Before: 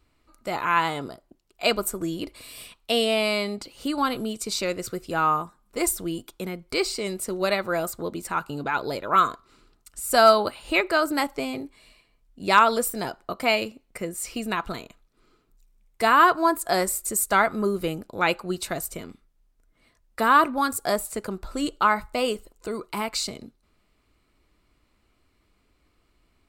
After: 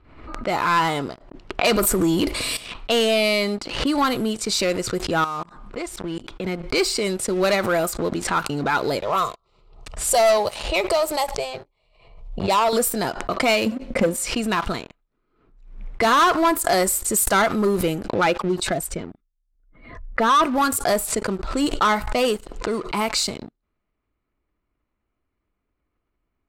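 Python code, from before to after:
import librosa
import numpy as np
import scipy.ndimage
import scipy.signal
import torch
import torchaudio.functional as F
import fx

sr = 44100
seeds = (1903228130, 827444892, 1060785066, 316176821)

y = fx.env_flatten(x, sr, amount_pct=50, at=(1.64, 2.57))
y = fx.level_steps(y, sr, step_db=17, at=(5.24, 6.46))
y = fx.fixed_phaser(y, sr, hz=660.0, stages=4, at=(9.01, 12.73))
y = fx.small_body(y, sr, hz=(240.0, 530.0), ring_ms=50, db=15, at=(13.66, 14.25))
y = fx.spec_expand(y, sr, power=1.5, at=(18.13, 20.43), fade=0.02)
y = fx.leveller(y, sr, passes=3)
y = fx.env_lowpass(y, sr, base_hz=2000.0, full_db=-13.5)
y = fx.pre_swell(y, sr, db_per_s=72.0)
y = F.gain(torch.from_numpy(y), -5.0).numpy()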